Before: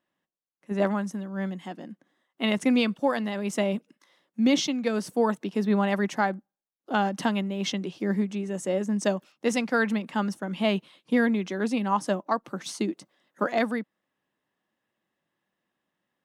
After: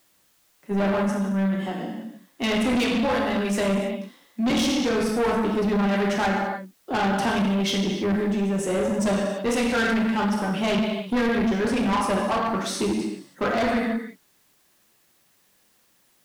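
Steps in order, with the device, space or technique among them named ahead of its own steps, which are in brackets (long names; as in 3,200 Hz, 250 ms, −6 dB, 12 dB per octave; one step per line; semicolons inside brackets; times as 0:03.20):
0:02.73–0:04.51: Chebyshev high-pass filter 180 Hz, order 5
parametric band 6,700 Hz −4.5 dB 0.28 octaves
reverb whose tail is shaped and stops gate 360 ms falling, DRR −1.5 dB
open-reel tape (soft clipping −25 dBFS, distortion −8 dB; parametric band 82 Hz +4.5 dB; white noise bed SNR 39 dB)
level +5.5 dB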